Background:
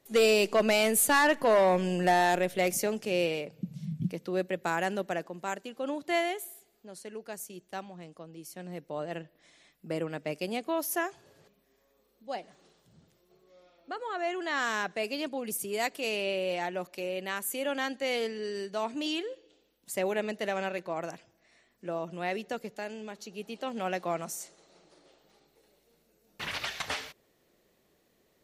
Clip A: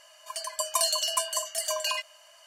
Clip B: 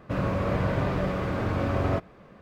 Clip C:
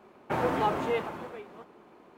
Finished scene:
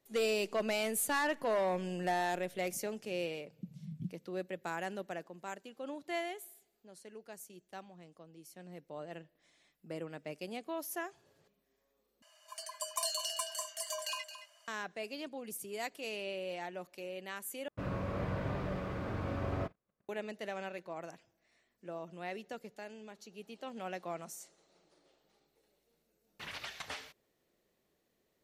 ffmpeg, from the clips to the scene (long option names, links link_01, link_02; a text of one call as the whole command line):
ffmpeg -i bed.wav -i cue0.wav -i cue1.wav -filter_complex "[0:a]volume=-9dB[link_01];[1:a]aecho=1:1:220:0.282[link_02];[2:a]agate=range=-28dB:threshold=-48dB:ratio=16:release=67:detection=peak[link_03];[link_01]asplit=3[link_04][link_05][link_06];[link_04]atrim=end=12.224[link_07];[link_02]atrim=end=2.46,asetpts=PTS-STARTPTS,volume=-10dB[link_08];[link_05]atrim=start=14.676:end=17.684[link_09];[link_03]atrim=end=2.41,asetpts=PTS-STARTPTS,volume=-10.5dB[link_10];[link_06]atrim=start=20.086[link_11];[link_07][link_08]acrossfade=duration=0.004:curve1=hsin:curve2=hsin[link_12];[link_12][link_09]acrossfade=duration=0.004:curve1=hsin:curve2=hsin[link_13];[link_13][link_10]acrossfade=duration=0.004:curve1=hsin:curve2=hsin[link_14];[link_14][link_11]acrossfade=duration=0.004:curve1=hsin:curve2=hsin" out.wav